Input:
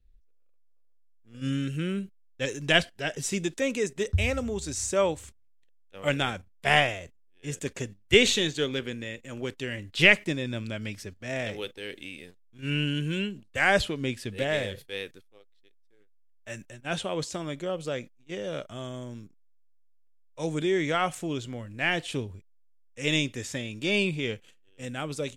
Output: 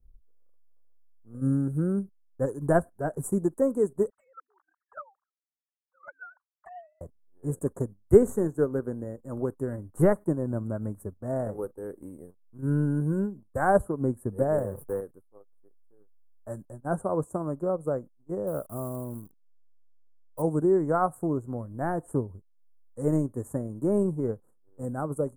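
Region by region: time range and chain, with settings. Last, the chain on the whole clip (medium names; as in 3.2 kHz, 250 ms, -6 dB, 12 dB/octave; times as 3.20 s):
4.10–7.01 s: formants replaced by sine waves + high-pass 1.3 kHz 24 dB/octave + touch-sensitive flanger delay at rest 6.5 ms, full sweep at -30.5 dBFS
14.58–15.01 s: jump at every zero crossing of -43.5 dBFS + three bands compressed up and down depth 70%
18.47–20.42 s: zero-crossing glitches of -34.5 dBFS + tape noise reduction on one side only decoder only
whole clip: dynamic bell 1.5 kHz, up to +5 dB, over -48 dBFS, Q 4.8; transient shaper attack +2 dB, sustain -7 dB; elliptic band-stop 1.1–9.6 kHz, stop band 50 dB; trim +4 dB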